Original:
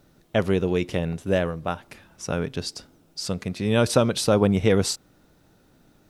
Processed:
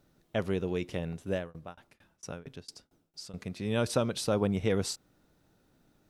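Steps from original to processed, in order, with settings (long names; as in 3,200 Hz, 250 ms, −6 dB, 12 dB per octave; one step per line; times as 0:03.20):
0:01.32–0:03.34: shaped tremolo saw down 4.4 Hz, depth 100%
level −9 dB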